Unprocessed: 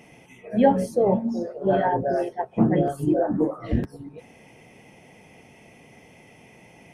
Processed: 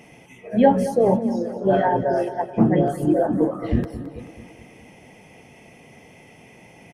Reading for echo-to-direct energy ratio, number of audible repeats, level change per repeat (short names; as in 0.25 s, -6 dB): -12.5 dB, 5, -5.0 dB